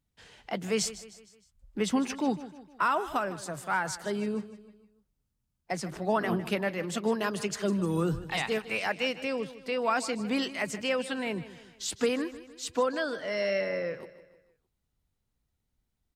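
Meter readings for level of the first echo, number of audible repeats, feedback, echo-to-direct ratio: -15.5 dB, 3, 47%, -14.5 dB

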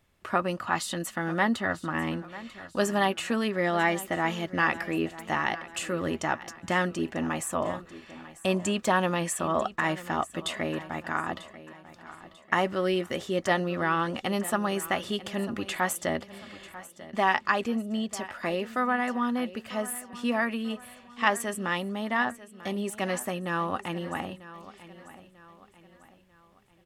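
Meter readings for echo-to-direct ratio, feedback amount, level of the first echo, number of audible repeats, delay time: -15.5 dB, 42%, -16.5 dB, 3, 943 ms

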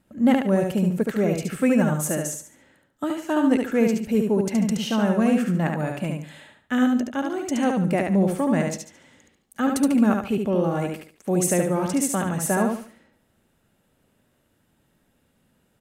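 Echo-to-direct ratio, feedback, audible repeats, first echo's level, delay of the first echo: -3.5 dB, 30%, 3, -4.0 dB, 72 ms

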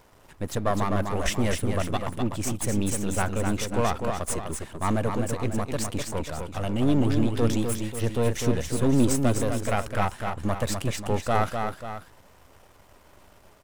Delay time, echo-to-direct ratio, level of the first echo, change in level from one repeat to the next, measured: 252 ms, -4.5 dB, -5.5 dB, no regular repeats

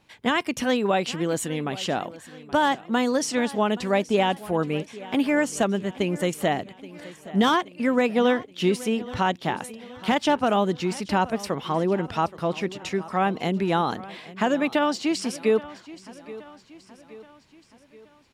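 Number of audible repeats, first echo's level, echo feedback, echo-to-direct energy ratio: 3, -18.0 dB, 51%, -16.5 dB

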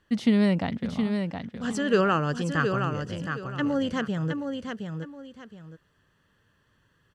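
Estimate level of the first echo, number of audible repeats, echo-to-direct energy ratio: -6.0 dB, 2, -5.5 dB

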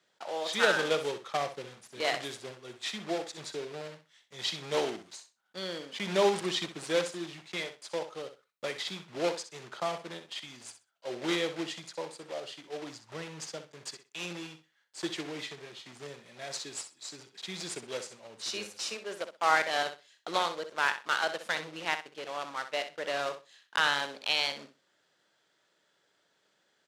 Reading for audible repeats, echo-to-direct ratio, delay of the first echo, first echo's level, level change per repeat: 2, -10.5 dB, 63 ms, -10.5 dB, -14.5 dB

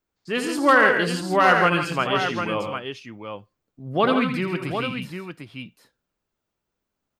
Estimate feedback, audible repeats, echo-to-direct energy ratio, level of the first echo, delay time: no regular repeats, 3, -3.0 dB, -8.5 dB, 81 ms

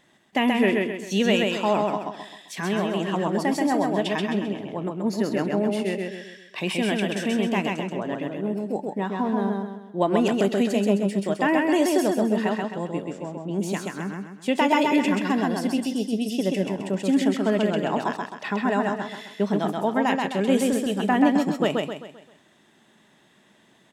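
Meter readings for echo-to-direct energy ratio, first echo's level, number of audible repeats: -2.0 dB, -3.0 dB, 5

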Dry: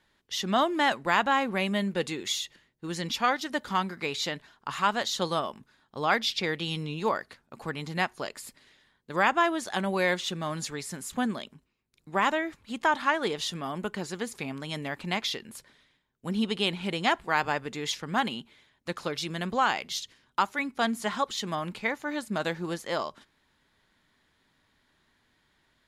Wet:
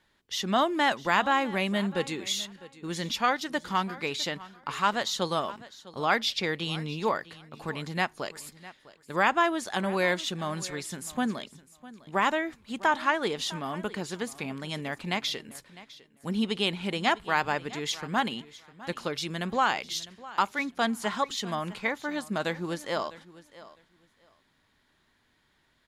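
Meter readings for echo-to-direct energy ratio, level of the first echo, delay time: -18.5 dB, -18.5 dB, 654 ms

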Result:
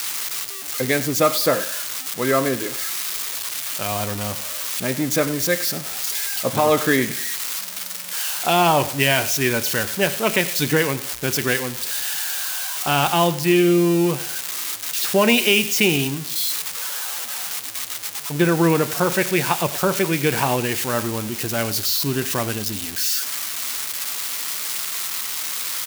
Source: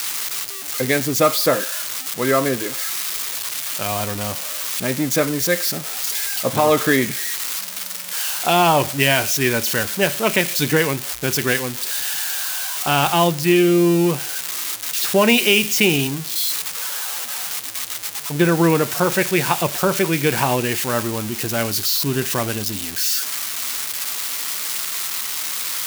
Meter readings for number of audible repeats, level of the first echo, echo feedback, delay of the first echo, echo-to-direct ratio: 2, -17.0 dB, 35%, 97 ms, -16.5 dB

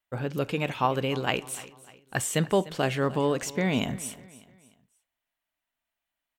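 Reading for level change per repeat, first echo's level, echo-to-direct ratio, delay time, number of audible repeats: -8.0 dB, -18.5 dB, -18.0 dB, 300 ms, 3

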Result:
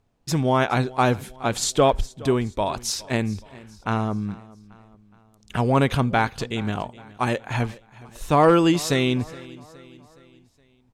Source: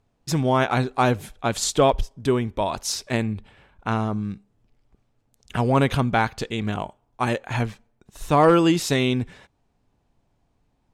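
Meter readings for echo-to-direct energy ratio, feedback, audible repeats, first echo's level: -20.0 dB, 49%, 3, -21.0 dB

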